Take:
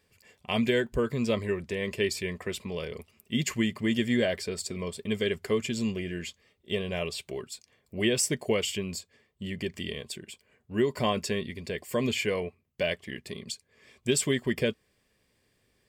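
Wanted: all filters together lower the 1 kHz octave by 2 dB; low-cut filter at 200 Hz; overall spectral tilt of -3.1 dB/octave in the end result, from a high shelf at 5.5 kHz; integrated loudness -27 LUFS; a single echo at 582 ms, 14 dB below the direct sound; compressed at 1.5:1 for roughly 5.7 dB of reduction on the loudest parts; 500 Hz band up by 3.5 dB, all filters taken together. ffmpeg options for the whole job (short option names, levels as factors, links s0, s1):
-af "highpass=200,equalizer=f=500:t=o:g=5.5,equalizer=f=1000:t=o:g=-5,highshelf=f=5500:g=5,acompressor=threshold=0.0178:ratio=1.5,aecho=1:1:582:0.2,volume=2.11"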